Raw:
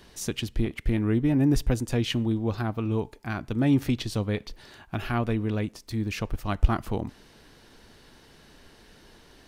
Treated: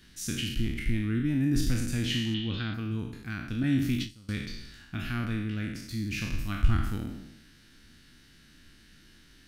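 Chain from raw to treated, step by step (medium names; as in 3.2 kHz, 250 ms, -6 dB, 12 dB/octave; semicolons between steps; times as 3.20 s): spectral sustain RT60 0.94 s; 2.34–2.74 s: resonant low-pass 3.4 kHz, resonance Q 5.1; 3.63–4.29 s: gate with hold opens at -14 dBFS; high-order bell 650 Hz -14.5 dB; trim -4.5 dB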